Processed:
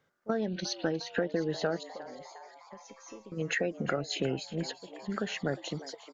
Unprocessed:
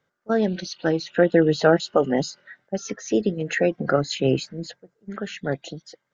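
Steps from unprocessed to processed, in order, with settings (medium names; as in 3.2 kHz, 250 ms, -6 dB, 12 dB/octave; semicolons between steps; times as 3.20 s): compression, threshold -28 dBFS, peak gain reduction 16.5 dB; 1.83–3.32 s: feedback comb 530 Hz, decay 0.37 s, mix 90%; frequency-shifting echo 356 ms, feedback 62%, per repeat +130 Hz, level -16 dB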